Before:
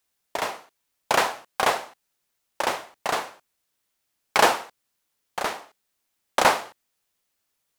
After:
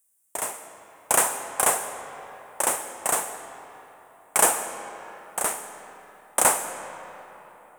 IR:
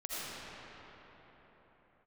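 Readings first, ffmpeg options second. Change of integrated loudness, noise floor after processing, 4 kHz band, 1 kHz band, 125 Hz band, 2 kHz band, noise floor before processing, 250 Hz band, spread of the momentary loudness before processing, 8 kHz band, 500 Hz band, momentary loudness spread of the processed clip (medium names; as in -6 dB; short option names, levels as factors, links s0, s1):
+1.0 dB, -55 dBFS, -7.5 dB, -3.5 dB, -3.0 dB, -4.0 dB, -77 dBFS, -3.0 dB, 17 LU, +12.0 dB, -3.0 dB, 21 LU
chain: -filter_complex "[0:a]dynaudnorm=f=170:g=7:m=1.68,highshelf=f=6300:t=q:w=3:g=13,asplit=2[s0][s1];[1:a]atrim=start_sample=2205,asetrate=57330,aresample=44100,adelay=56[s2];[s1][s2]afir=irnorm=-1:irlink=0,volume=0.282[s3];[s0][s3]amix=inputs=2:normalize=0,volume=0.501"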